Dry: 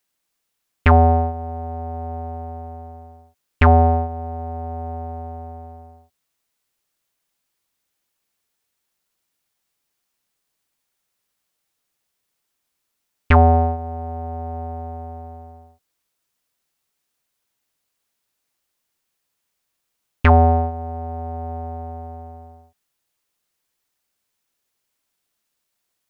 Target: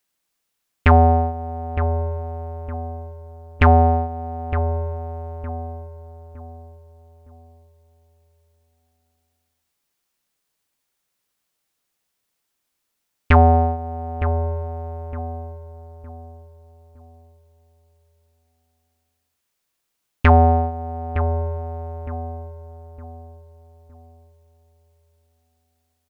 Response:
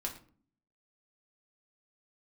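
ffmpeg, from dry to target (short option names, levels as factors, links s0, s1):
-filter_complex "[0:a]asplit=2[s0][s1];[s1]adelay=912,lowpass=f=1200:p=1,volume=0.355,asplit=2[s2][s3];[s3]adelay=912,lowpass=f=1200:p=1,volume=0.37,asplit=2[s4][s5];[s5]adelay=912,lowpass=f=1200:p=1,volume=0.37,asplit=2[s6][s7];[s7]adelay=912,lowpass=f=1200:p=1,volume=0.37[s8];[s0][s2][s4][s6][s8]amix=inputs=5:normalize=0"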